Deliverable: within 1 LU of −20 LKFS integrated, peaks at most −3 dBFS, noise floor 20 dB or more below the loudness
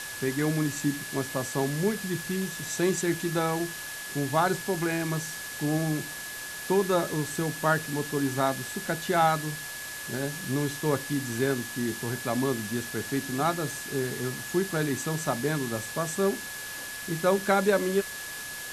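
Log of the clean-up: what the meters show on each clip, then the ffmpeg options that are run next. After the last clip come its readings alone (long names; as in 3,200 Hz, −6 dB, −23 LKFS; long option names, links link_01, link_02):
interfering tone 1,700 Hz; level of the tone −39 dBFS; background noise floor −38 dBFS; target noise floor −49 dBFS; integrated loudness −28.5 LKFS; sample peak −10.5 dBFS; target loudness −20.0 LKFS
→ -af "bandreject=frequency=1700:width=30"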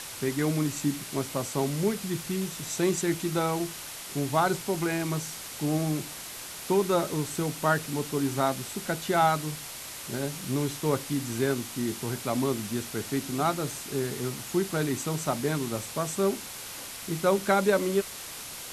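interfering tone none found; background noise floor −41 dBFS; target noise floor −49 dBFS
→ -af "afftdn=noise_reduction=8:noise_floor=-41"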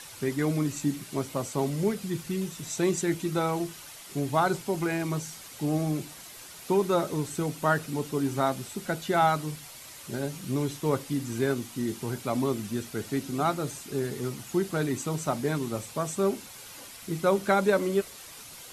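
background noise floor −46 dBFS; target noise floor −49 dBFS
→ -af "afftdn=noise_reduction=6:noise_floor=-46"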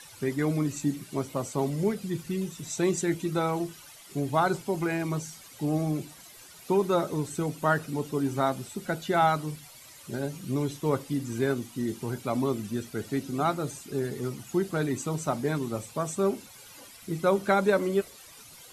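background noise floor −50 dBFS; integrated loudness −29.5 LKFS; sample peak −11.0 dBFS; target loudness −20.0 LKFS
→ -af "volume=9.5dB,alimiter=limit=-3dB:level=0:latency=1"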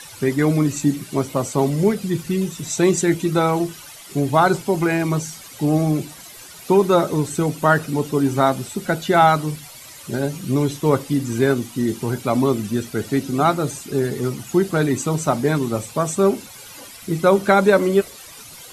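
integrated loudness −20.0 LKFS; sample peak −3.0 dBFS; background noise floor −40 dBFS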